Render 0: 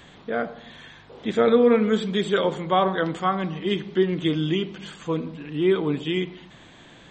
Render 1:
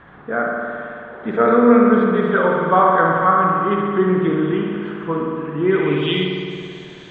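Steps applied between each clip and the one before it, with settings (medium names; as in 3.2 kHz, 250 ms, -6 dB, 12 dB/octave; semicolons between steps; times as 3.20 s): spring tank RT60 2.5 s, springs 54 ms, chirp 30 ms, DRR -1 dB; low-pass sweep 1.4 kHz -> 5.7 kHz, 5.64–6.38 s; trim +1.5 dB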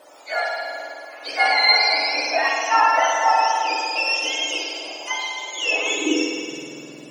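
spectrum inverted on a logarithmic axis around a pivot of 1 kHz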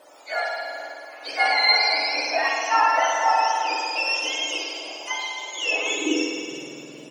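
frequency-shifting echo 441 ms, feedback 45%, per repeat +72 Hz, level -21 dB; trim -2.5 dB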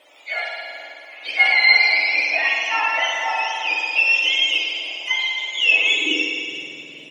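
high-order bell 2.7 kHz +14.5 dB 1.1 oct; trim -5 dB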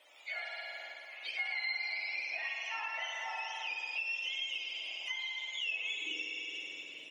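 high-pass 830 Hz 6 dB/octave; compression 3:1, threshold -31 dBFS, peak gain reduction 16 dB; trim -8 dB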